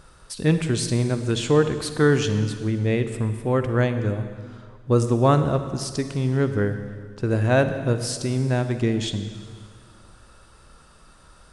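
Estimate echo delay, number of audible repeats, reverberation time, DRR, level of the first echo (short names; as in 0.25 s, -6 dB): none, none, 2.0 s, 9.0 dB, none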